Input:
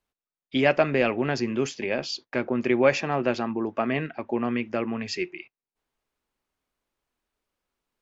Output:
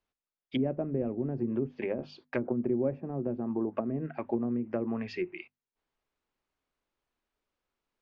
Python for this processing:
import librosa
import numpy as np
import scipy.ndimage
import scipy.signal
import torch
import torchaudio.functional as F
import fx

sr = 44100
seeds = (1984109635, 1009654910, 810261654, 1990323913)

y = fx.env_lowpass_down(x, sr, base_hz=330.0, full_db=-21.5)
y = scipy.signal.sosfilt(scipy.signal.bessel(2, 5400.0, 'lowpass', norm='mag', fs=sr, output='sos'), y)
y = fx.hum_notches(y, sr, base_hz=50, count=5)
y = F.gain(torch.from_numpy(y), -2.5).numpy()